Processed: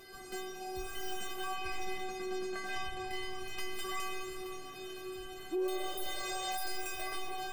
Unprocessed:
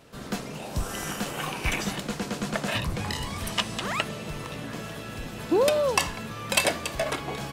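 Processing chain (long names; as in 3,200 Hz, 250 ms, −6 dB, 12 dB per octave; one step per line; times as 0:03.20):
stylus tracing distortion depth 0.34 ms
convolution reverb RT60 2.7 s, pre-delay 13 ms, DRR 5 dB
upward compression, threshold −29 dBFS
0:01.53–0:03.74: high-shelf EQ 8,800 Hz −11.5 dB
0:05.82–0:06.61: healed spectral selection 450–8,900 Hz both
stiff-string resonator 370 Hz, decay 0.73 s, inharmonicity 0.008
brickwall limiter −38 dBFS, peak gain reduction 11 dB
level +10.5 dB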